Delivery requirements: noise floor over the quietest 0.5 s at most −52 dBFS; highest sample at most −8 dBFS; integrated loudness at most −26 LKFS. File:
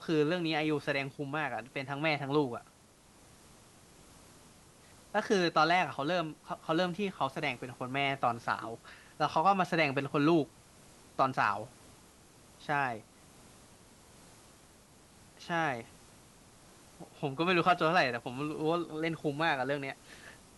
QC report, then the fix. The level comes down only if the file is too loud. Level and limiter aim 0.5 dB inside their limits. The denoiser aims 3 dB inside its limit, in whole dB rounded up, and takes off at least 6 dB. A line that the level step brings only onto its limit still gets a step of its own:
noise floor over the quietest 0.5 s −60 dBFS: in spec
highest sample −14.0 dBFS: in spec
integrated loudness −31.5 LKFS: in spec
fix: no processing needed

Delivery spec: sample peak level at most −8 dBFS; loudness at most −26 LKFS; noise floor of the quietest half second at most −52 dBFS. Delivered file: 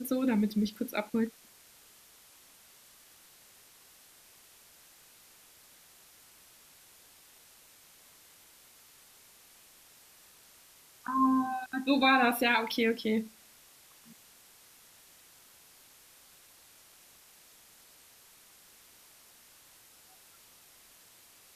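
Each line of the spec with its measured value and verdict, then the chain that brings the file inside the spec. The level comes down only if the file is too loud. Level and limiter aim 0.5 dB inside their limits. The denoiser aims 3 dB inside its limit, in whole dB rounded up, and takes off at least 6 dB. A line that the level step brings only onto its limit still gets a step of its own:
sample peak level −13.0 dBFS: in spec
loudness −29.0 LKFS: in spec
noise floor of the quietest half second −58 dBFS: in spec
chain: no processing needed

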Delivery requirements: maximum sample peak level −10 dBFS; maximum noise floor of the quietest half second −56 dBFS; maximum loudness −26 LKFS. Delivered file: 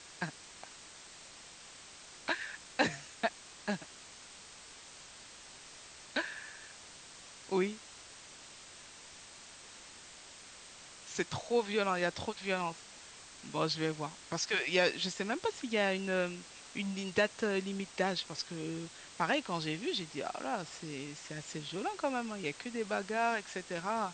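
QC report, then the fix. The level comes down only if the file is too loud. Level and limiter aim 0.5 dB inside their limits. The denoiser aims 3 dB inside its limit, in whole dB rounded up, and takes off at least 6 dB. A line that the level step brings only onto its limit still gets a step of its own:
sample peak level −14.0 dBFS: in spec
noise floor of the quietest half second −53 dBFS: out of spec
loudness −35.5 LKFS: in spec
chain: broadband denoise 6 dB, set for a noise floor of −53 dBFS

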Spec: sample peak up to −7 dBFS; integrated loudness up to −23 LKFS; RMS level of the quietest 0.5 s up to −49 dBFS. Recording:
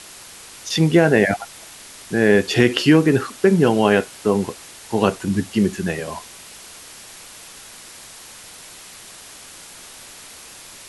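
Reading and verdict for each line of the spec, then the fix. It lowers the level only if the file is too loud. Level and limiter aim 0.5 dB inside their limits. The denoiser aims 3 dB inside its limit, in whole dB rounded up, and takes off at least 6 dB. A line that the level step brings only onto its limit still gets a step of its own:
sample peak −2.0 dBFS: out of spec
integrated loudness −18.0 LKFS: out of spec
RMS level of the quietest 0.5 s −41 dBFS: out of spec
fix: broadband denoise 6 dB, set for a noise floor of −41 dBFS
level −5.5 dB

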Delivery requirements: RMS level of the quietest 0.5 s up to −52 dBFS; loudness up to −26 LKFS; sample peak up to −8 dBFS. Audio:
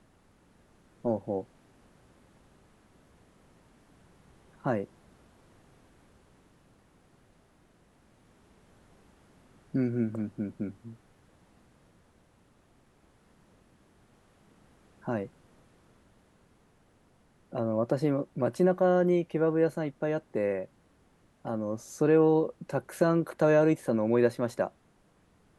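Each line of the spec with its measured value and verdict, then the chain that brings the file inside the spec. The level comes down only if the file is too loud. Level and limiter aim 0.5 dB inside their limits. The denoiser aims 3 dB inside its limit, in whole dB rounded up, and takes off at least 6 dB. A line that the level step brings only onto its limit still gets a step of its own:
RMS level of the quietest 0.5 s −65 dBFS: in spec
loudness −29.0 LKFS: in spec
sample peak −11.5 dBFS: in spec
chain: no processing needed

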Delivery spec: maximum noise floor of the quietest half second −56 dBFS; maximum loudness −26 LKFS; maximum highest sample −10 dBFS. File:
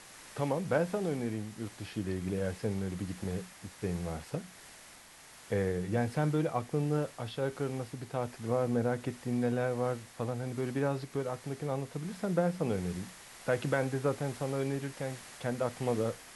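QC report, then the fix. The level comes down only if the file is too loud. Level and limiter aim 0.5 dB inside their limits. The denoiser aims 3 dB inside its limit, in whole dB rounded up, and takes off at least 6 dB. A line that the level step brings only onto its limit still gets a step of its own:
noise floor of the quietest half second −54 dBFS: out of spec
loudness −34.5 LKFS: in spec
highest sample −15.5 dBFS: in spec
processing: broadband denoise 6 dB, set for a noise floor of −54 dBFS

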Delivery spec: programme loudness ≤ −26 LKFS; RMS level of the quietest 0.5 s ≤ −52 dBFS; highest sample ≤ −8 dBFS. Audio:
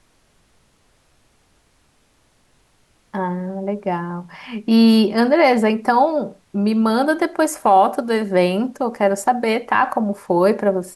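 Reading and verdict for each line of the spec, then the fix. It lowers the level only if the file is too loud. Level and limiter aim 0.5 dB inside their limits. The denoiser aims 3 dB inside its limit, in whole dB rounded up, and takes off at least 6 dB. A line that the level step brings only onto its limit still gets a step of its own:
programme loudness −18.0 LKFS: out of spec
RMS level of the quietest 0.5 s −59 dBFS: in spec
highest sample −4.5 dBFS: out of spec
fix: level −8.5 dB

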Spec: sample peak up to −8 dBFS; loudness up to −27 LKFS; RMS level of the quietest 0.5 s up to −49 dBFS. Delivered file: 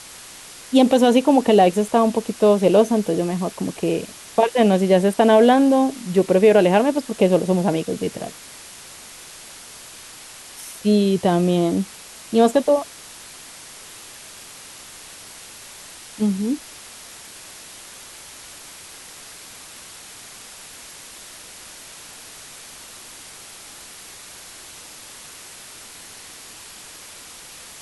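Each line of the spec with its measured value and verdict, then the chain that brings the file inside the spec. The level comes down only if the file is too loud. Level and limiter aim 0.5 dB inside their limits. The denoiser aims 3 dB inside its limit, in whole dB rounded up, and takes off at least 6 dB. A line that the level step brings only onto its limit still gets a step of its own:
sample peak −4.0 dBFS: out of spec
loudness −18.0 LKFS: out of spec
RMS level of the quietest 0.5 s −41 dBFS: out of spec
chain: level −9.5 dB

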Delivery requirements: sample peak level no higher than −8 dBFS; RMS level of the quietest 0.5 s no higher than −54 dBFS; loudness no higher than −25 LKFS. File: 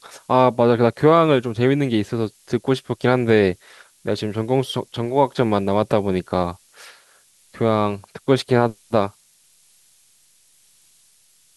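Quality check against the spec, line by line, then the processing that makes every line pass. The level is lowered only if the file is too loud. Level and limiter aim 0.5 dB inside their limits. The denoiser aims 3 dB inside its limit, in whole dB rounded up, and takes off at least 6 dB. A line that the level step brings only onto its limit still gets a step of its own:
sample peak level −2.5 dBFS: out of spec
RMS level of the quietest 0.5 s −57 dBFS: in spec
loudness −20.0 LKFS: out of spec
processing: level −5.5 dB
brickwall limiter −8.5 dBFS

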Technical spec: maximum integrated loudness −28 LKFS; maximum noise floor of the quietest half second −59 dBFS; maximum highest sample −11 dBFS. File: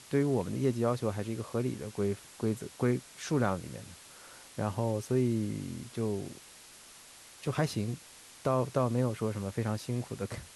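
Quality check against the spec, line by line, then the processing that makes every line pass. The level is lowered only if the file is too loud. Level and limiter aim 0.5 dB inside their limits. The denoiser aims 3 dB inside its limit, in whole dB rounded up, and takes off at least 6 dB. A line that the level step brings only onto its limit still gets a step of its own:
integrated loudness −33.0 LKFS: in spec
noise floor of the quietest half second −53 dBFS: out of spec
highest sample −14.5 dBFS: in spec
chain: broadband denoise 9 dB, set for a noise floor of −53 dBFS

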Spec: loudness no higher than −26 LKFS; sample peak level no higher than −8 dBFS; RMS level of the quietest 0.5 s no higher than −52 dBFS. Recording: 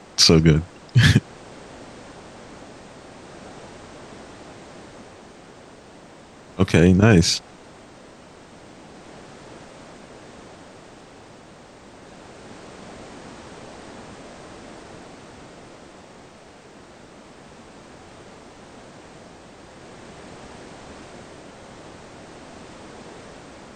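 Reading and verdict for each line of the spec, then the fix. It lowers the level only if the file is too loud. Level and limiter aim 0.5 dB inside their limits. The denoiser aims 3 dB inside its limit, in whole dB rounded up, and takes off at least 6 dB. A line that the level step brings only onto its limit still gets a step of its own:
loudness −16.5 LKFS: out of spec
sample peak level −2.0 dBFS: out of spec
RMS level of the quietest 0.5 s −46 dBFS: out of spec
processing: level −10 dB

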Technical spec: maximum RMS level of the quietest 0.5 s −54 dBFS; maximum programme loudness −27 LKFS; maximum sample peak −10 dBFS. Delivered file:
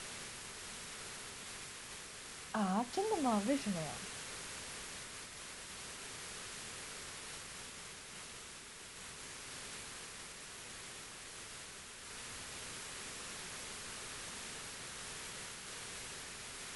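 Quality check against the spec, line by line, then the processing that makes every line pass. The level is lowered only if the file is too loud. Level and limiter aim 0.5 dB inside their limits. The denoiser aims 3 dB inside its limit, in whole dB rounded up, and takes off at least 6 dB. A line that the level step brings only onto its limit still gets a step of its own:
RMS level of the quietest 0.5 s −52 dBFS: out of spec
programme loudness −43.5 LKFS: in spec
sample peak −22.0 dBFS: in spec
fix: broadband denoise 6 dB, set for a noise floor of −52 dBFS

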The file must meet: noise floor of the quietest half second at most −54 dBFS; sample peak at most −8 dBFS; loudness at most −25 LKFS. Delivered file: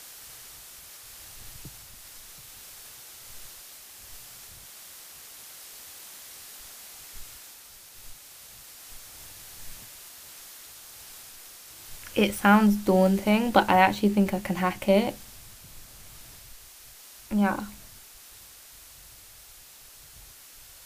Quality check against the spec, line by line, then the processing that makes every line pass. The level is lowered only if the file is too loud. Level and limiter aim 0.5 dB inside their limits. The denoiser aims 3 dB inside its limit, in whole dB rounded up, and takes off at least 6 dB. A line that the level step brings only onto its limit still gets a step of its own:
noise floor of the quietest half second −50 dBFS: out of spec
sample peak −4.5 dBFS: out of spec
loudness −23.0 LKFS: out of spec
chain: broadband denoise 6 dB, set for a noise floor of −50 dBFS
level −2.5 dB
brickwall limiter −8.5 dBFS

